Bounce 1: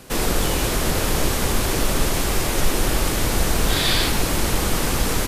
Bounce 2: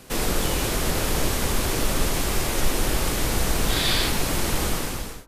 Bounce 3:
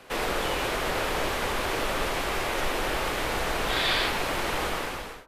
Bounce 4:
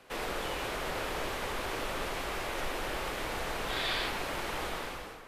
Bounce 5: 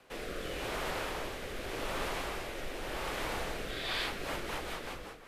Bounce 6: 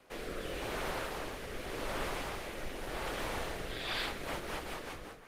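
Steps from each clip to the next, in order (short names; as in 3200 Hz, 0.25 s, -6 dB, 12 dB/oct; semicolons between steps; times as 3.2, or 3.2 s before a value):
ending faded out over 0.63 s; de-hum 46.03 Hz, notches 40; gain -2.5 dB
three-band isolator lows -13 dB, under 410 Hz, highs -14 dB, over 3500 Hz; gain +2 dB
echo with dull and thin repeats by turns 0.427 s, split 1900 Hz, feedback 53%, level -13 dB; gain -7.5 dB
rotary speaker horn 0.85 Hz, later 5.5 Hz, at 3.64
Opus 20 kbps 48000 Hz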